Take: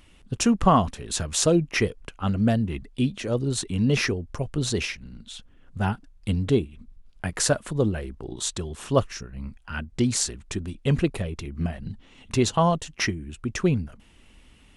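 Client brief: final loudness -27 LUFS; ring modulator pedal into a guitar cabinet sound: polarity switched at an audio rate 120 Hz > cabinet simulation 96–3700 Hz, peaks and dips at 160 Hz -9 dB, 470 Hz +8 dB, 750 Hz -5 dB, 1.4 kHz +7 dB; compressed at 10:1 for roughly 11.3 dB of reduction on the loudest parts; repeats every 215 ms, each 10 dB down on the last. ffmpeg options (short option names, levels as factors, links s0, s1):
-af "acompressor=threshold=0.0631:ratio=10,aecho=1:1:215|430|645|860:0.316|0.101|0.0324|0.0104,aeval=exprs='val(0)*sgn(sin(2*PI*120*n/s))':c=same,highpass=96,equalizer=f=160:t=q:w=4:g=-9,equalizer=f=470:t=q:w=4:g=8,equalizer=f=750:t=q:w=4:g=-5,equalizer=f=1400:t=q:w=4:g=7,lowpass=f=3700:w=0.5412,lowpass=f=3700:w=1.3066,volume=1.58"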